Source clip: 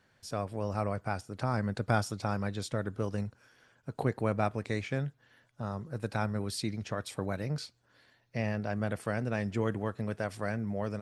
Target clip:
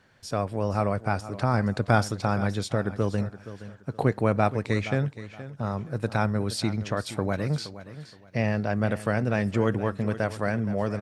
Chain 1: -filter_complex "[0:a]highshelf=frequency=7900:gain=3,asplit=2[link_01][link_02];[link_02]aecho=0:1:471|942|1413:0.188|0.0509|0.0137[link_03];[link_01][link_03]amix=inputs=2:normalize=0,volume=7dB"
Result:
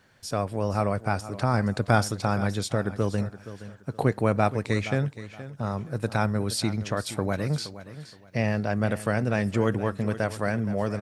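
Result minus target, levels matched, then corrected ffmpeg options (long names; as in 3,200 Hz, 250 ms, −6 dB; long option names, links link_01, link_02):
8,000 Hz band +4.0 dB
-filter_complex "[0:a]highshelf=frequency=7900:gain=-6,asplit=2[link_01][link_02];[link_02]aecho=0:1:471|942|1413:0.188|0.0509|0.0137[link_03];[link_01][link_03]amix=inputs=2:normalize=0,volume=7dB"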